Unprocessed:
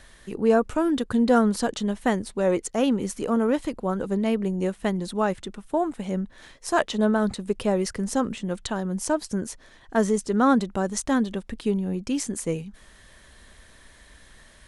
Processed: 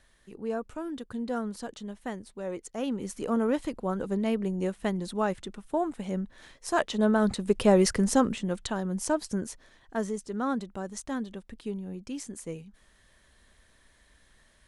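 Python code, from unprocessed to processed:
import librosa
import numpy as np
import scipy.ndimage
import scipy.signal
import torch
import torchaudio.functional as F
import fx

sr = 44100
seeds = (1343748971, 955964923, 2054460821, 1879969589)

y = fx.gain(x, sr, db=fx.line((2.53, -13.0), (3.32, -4.0), (6.86, -4.0), (7.88, 4.5), (8.64, -3.0), (9.35, -3.0), (10.18, -10.5)))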